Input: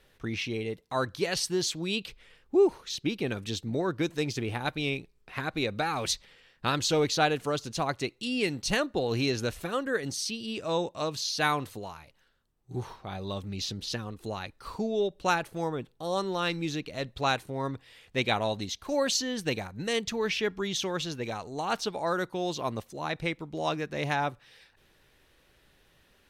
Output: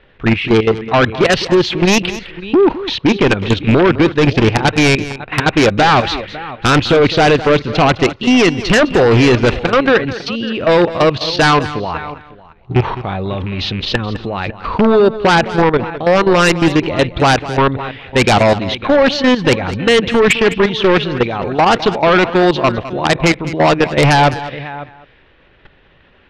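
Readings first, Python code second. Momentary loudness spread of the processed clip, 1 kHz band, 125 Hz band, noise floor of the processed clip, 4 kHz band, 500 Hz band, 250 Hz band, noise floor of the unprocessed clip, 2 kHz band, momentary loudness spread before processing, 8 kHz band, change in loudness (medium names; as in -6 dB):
10 LU, +17.5 dB, +19.0 dB, -49 dBFS, +14.0 dB, +18.0 dB, +19.0 dB, -65 dBFS, +18.0 dB, 9 LU, +8.5 dB, +17.5 dB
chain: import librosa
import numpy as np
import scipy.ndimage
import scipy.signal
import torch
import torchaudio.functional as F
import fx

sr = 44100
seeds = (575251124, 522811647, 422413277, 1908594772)

p1 = fx.rattle_buzz(x, sr, strikes_db=-35.0, level_db=-33.0)
p2 = 10.0 ** (-25.0 / 20.0) * np.tanh(p1 / 10.0 ** (-25.0 / 20.0))
p3 = p1 + (p2 * 10.0 ** (-9.5 / 20.0))
p4 = scipy.signal.sosfilt(scipy.signal.butter(4, 3100.0, 'lowpass', fs=sr, output='sos'), p3)
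p5 = fx.level_steps(p4, sr, step_db=15)
p6 = p5 + 10.0 ** (-21.0 / 20.0) * np.pad(p5, (int(551 * sr / 1000.0), 0))[:len(p5)]
p7 = fx.fold_sine(p6, sr, drive_db=12, ceiling_db=-15.0)
p8 = p7 + fx.echo_single(p7, sr, ms=208, db=-14.5, dry=0)
y = p8 * 10.0 ** (9.0 / 20.0)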